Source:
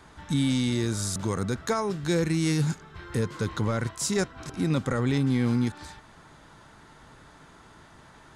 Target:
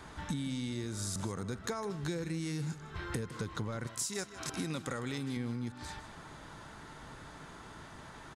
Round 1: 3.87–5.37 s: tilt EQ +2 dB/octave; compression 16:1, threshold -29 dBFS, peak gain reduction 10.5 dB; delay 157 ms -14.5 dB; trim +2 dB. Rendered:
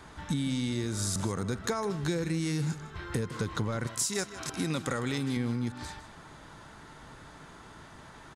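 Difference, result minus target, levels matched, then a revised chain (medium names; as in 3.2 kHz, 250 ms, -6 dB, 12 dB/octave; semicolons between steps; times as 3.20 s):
compression: peak gain reduction -6 dB
3.87–5.37 s: tilt EQ +2 dB/octave; compression 16:1, threshold -35.5 dBFS, peak gain reduction 16.5 dB; delay 157 ms -14.5 dB; trim +2 dB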